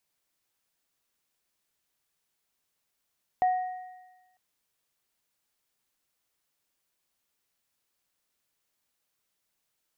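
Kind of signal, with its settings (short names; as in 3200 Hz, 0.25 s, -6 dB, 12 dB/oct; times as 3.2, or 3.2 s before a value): sine partials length 0.95 s, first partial 736 Hz, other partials 1880 Hz, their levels -19 dB, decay 1.15 s, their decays 1.49 s, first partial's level -19 dB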